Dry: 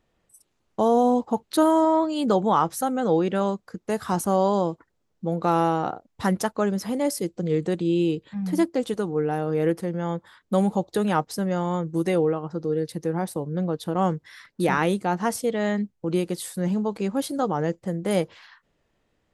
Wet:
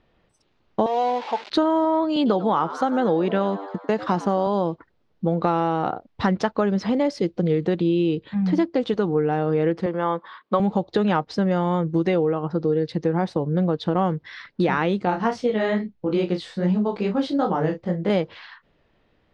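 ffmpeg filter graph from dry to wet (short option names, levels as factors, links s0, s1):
-filter_complex "[0:a]asettb=1/sr,asplit=3[s0][s1][s2];[s0]atrim=end=0.864[s3];[s1]atrim=start=0.86:end=1.5,asetpts=PTS-STARTPTS,afade=t=in:d=0.004:c=qsin,afade=t=out:st=0.636:d=0.004:c=qsin,aeval=exprs='val(0)+0.5*0.0237*sgn(val(0))':c=same,highpass=770,equalizer=f=1300:w=1.8:g=-4.5[s4];[s2]atrim=start=1.496[s5];[s3][s4]acrossfade=d=0.004:c1=hsin:c2=qsin[s6];[s6][s5]acrossfade=d=0.004:c1=qsin:c2=hsin,asettb=1/sr,asplit=3[s7][s8][s9];[s7]atrim=end=2.164[s10];[s8]atrim=start=2.16:end=4.47,asetpts=PTS-STARTPTS,afade=t=in:d=0.004:c=qsin,afade=t=out:st=2.306:d=0.004:c=qsin,agate=range=0.251:threshold=0.0126:ratio=16:release=100:detection=peak,highpass=130,asplit=6[s11][s12][s13][s14][s15][s16];[s12]adelay=94,afreqshift=98,volume=0.15[s17];[s13]adelay=188,afreqshift=196,volume=0.0851[s18];[s14]adelay=282,afreqshift=294,volume=0.0484[s19];[s15]adelay=376,afreqshift=392,volume=0.0279[s20];[s16]adelay=470,afreqshift=490,volume=0.0158[s21];[s11][s17][s18][s19][s20][s21]amix=inputs=6:normalize=0,atrim=end_sample=101871[s22];[s9]atrim=start=4.466[s23];[s10][s22]acrossfade=d=0.004:c1=hsin:c2=qsin[s24];[s24][s23]acrossfade=d=0.004:c1=qsin:c2=hsin,asettb=1/sr,asplit=3[s25][s26][s27];[s25]atrim=end=9.864[s28];[s26]atrim=start=9.86:end=10.6,asetpts=PTS-STARTPTS,afade=t=in:d=0.004:c=qsin,afade=t=out:st=0.736:d=0.004:c=qsin,highpass=300,lowpass=4900,equalizer=f=1100:w=4.6:g=11.5[s29];[s27]atrim=start=10.596[s30];[s28][s29]acrossfade=d=0.004:c1=hsin:c2=qsin[s31];[s31][s30]acrossfade=d=0.004:c1=qsin:c2=hsin,asettb=1/sr,asplit=3[s32][s33][s34];[s32]atrim=end=15.054[s35];[s33]atrim=start=15.05:end=18.1,asetpts=PTS-STARTPTS,afade=t=in:d=0.004:c=qsin,afade=t=out:st=3.046:d=0.004:c=qsin,flanger=delay=16.5:depth=5.2:speed=2.4,asplit=2[s36][s37];[s37]adelay=32,volume=0.355[s38];[s36][s38]amix=inputs=2:normalize=0,atrim=end_sample=134505[s39];[s34]atrim=start=18.096[s40];[s35][s39]acrossfade=d=0.004:c1=hsin:c2=qsin[s41];[s41][s40]acrossfade=d=0.004:c1=qsin:c2=hsin,lowpass=f=4500:w=0.5412,lowpass=f=4500:w=1.3066,acompressor=threshold=0.0631:ratio=6,volume=2.24"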